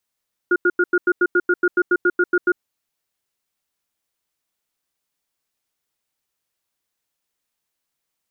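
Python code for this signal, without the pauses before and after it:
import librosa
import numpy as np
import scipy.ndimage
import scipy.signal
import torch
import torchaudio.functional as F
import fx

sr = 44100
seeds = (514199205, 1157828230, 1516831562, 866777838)

y = fx.cadence(sr, length_s=2.06, low_hz=356.0, high_hz=1430.0, on_s=0.05, off_s=0.09, level_db=-15.5)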